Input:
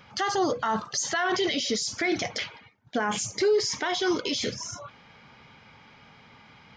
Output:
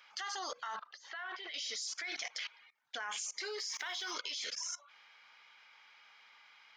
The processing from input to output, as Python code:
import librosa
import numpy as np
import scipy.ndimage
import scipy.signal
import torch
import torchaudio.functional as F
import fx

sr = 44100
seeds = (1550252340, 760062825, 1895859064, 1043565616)

y = fx.quant_dither(x, sr, seeds[0], bits=10, dither='none', at=(3.58, 4.1), fade=0.02)
y = scipy.signal.sosfilt(scipy.signal.butter(2, 1300.0, 'highpass', fs=sr, output='sos'), y)
y = fx.level_steps(y, sr, step_db=21)
y = fx.air_absorb(y, sr, metres=320.0, at=(0.76, 1.54))
y = y * librosa.db_to_amplitude(1.5)